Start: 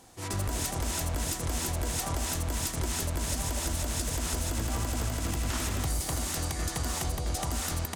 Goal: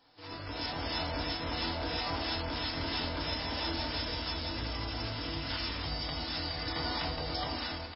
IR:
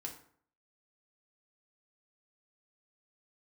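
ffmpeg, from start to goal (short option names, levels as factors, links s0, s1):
-filter_complex "[0:a]flanger=delay=7.6:depth=6.3:regen=-80:speed=0.38:shape=triangular,aemphasis=mode=production:type=50fm,asoftclip=type=hard:threshold=0.141,lowshelf=f=200:g=-11,asplit=2[s0][s1];[s1]adelay=21,volume=0.299[s2];[s0][s2]amix=inputs=2:normalize=0,dynaudnorm=f=230:g=5:m=2.51,bandreject=f=370:w=12,asettb=1/sr,asplit=3[s3][s4][s5];[s3]atrim=end=4.094[s6];[s4]atrim=start=4.09:end=6.67,asetpts=PTS-STARTPTS,afade=t=in:d=0.004:c=qsin,afade=t=out:st=2.576:d=0.004:c=qsin,acrossover=split=180|3000[s7][s8][s9];[s8]acompressor=threshold=0.0158:ratio=8[s10];[s7][s10][s9]amix=inputs=3:normalize=0[s11];[s5]atrim=start=6.666[s12];[s6][s11]acrossfade=d=0.004:c1=hsin:c2=qsin[s13];[s13][s12]acrossfade=d=0.004:c1=qsin:c2=hsin[s14];[1:a]atrim=start_sample=2205,afade=t=out:st=0.19:d=0.01,atrim=end_sample=8820[s15];[s14][s15]afir=irnorm=-1:irlink=0" -ar 12000 -c:a libmp3lame -b:a 16k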